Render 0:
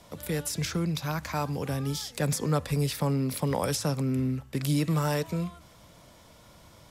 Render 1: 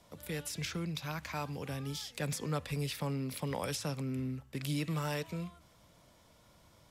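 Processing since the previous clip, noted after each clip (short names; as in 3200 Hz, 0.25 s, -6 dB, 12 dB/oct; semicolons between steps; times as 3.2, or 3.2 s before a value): dynamic EQ 2700 Hz, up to +7 dB, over -50 dBFS, Q 1.1; gain -9 dB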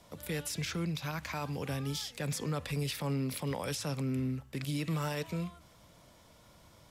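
limiter -29.5 dBFS, peak gain reduction 9 dB; gain +3.5 dB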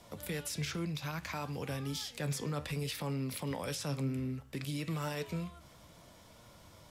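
in parallel at +1 dB: compressor, threshold -44 dBFS, peak gain reduction 13 dB; on the sum: flange 0.62 Hz, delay 8.2 ms, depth 6.8 ms, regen +73%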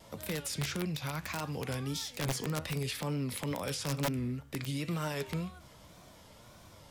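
wrapped overs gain 28 dB; wow and flutter 100 cents; gain +2 dB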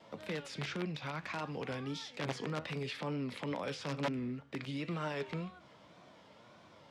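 BPF 180–3500 Hz; gain -1 dB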